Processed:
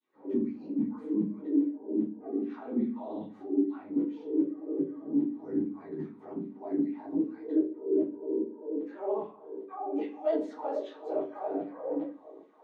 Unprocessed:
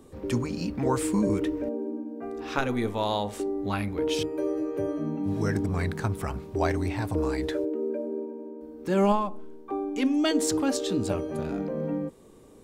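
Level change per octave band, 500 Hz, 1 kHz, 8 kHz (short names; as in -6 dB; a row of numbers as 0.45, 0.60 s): -5.0 dB, -10.0 dB, under -35 dB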